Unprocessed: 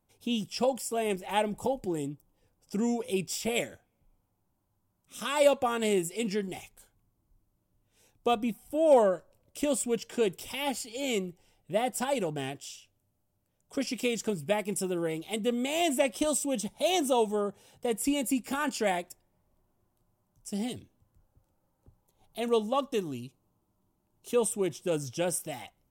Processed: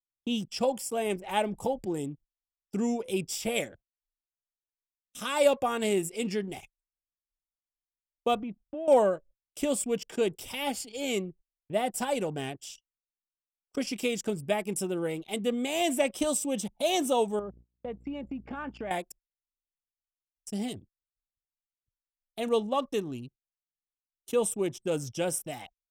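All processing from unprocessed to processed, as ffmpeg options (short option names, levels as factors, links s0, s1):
-filter_complex "[0:a]asettb=1/sr,asplit=3[s0][s1][s2];[s0]atrim=end=8.354[s3];[s1]atrim=start=8.35:end=8.88,asetpts=PTS-STARTPTS,afade=t=in:d=0.004:c=qsin,afade=t=out:st=0.526:d=0.004:c=qsin,lowpass=3300,acompressor=threshold=0.0224:ratio=5:attack=3.2:release=140:knee=1:detection=peak[s4];[s2]atrim=start=8.876[s5];[s3][s4]acrossfade=d=0.004:c1=hsin:c2=qsin[s6];[s6][s5]acrossfade=d=0.004:c1=qsin:c2=hsin,asettb=1/sr,asplit=3[s7][s8][s9];[s7]atrim=end=17.394[s10];[s8]atrim=start=17.39:end=18.91,asetpts=PTS-STARTPTS,afade=t=in:d=0.004:c=qsin,afade=t=out:st=1.516:d=0.004:c=qsin,lowpass=2100,acompressor=threshold=0.02:ratio=4:attack=3.2:release=140:knee=1:detection=peak,aeval=exprs='val(0)+0.00251*(sin(2*PI*60*n/s)+sin(2*PI*2*60*n/s)/2+sin(2*PI*3*60*n/s)/3+sin(2*PI*4*60*n/s)/4+sin(2*PI*5*60*n/s)/5)':c=same[s11];[s9]atrim=start=18.906[s12];[s10][s11]acrossfade=d=0.004:c1=hsin:c2=qsin[s13];[s13][s12]acrossfade=d=0.004:c1=qsin:c2=hsin,anlmdn=0.0251,agate=range=0.0447:threshold=0.00316:ratio=16:detection=peak"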